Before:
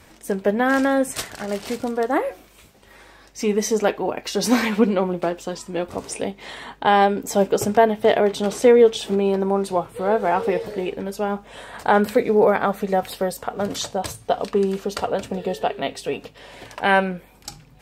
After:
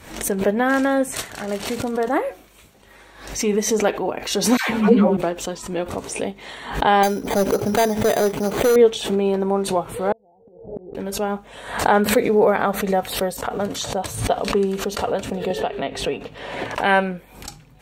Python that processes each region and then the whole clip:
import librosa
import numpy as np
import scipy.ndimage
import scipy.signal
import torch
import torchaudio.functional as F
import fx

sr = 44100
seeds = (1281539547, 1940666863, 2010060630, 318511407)

y = fx.chain(x, sr, fx.peak_eq(hz=110.0, db=8.0, octaves=1.5),
    fx.doubler(ms=15.0, db=-5.0),
    fx.dispersion(late='lows', ms=132.0, hz=690.0), at=(4.57, 5.17))
y = fx.chain(y, sr, fx.resample_bad(factor=8, down='filtered', up='hold'),
    fx.clip_hard(threshold_db=-13.0), at=(7.03, 8.76))
y = fx.chain(y, sr, fx.steep_lowpass(hz=850.0, slope=72),
    fx.low_shelf(hz=150.0, db=7.0),
    fx.gate_flip(shuts_db=-18.0, range_db=-36), at=(10.12, 10.95))
y = fx.chain(y, sr, fx.high_shelf(hz=5700.0, db=-11.5),
    fx.band_squash(depth_pct=100), at=(15.5, 16.75))
y = fx.notch(y, sr, hz=5000.0, q=10.0)
y = fx.pre_swell(y, sr, db_per_s=89.0)